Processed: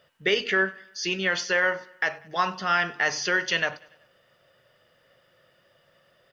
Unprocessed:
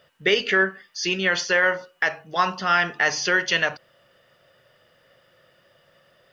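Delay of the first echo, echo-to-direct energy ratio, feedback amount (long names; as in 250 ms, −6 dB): 96 ms, −21.5 dB, 53%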